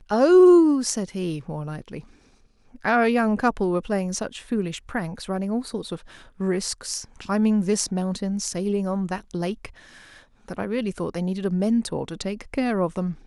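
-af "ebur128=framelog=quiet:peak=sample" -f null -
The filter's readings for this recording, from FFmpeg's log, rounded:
Integrated loudness:
  I:         -23.5 LUFS
  Threshold: -34.1 LUFS
Loudness range:
  LRA:         5.9 LU
  Threshold: -45.8 LUFS
  LRA low:   -28.6 LUFS
  LRA high:  -22.7 LUFS
Sample peak:
  Peak:       -6.2 dBFS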